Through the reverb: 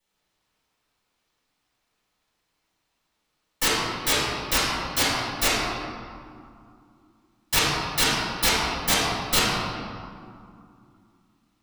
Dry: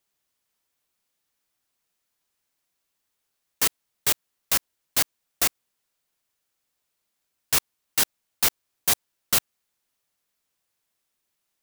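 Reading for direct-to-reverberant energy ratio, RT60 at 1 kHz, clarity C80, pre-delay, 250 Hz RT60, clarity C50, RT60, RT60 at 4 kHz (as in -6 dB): -14.0 dB, 2.5 s, -1.0 dB, 3 ms, 3.4 s, -3.5 dB, 2.4 s, 1.2 s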